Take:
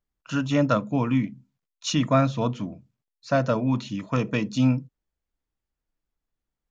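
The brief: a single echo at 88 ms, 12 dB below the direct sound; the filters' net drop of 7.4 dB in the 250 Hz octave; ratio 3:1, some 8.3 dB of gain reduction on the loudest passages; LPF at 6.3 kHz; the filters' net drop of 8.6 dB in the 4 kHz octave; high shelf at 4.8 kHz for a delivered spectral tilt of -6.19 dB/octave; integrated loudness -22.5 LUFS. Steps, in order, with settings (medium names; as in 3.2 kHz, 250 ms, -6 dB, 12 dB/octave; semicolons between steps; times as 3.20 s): low-pass 6.3 kHz; peaking EQ 250 Hz -8.5 dB; peaking EQ 4 kHz -9 dB; treble shelf 4.8 kHz -6 dB; compression 3:1, threshold -29 dBFS; delay 88 ms -12 dB; trim +11.5 dB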